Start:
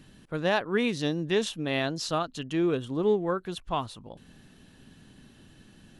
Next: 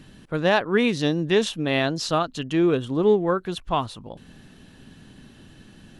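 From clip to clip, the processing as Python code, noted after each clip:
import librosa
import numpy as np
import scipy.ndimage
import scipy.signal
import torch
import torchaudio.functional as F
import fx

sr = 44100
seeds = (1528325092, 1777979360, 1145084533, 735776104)

y = fx.high_shelf(x, sr, hz=7100.0, db=-4.5)
y = y * librosa.db_to_amplitude(6.0)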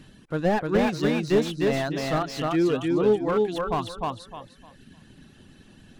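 y = fx.dereverb_blind(x, sr, rt60_s=1.6)
y = fx.echo_feedback(y, sr, ms=304, feedback_pct=25, wet_db=-3.0)
y = fx.slew_limit(y, sr, full_power_hz=93.0)
y = y * librosa.db_to_amplitude(-1.5)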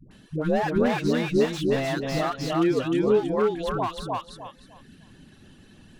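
y = fx.dispersion(x, sr, late='highs', ms=112.0, hz=540.0)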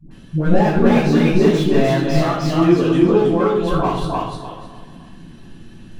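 y = fx.echo_feedback(x, sr, ms=428, feedback_pct=32, wet_db=-19)
y = fx.room_shoebox(y, sr, seeds[0], volume_m3=870.0, walls='furnished', distance_m=8.6)
y = y * librosa.db_to_amplitude(-3.5)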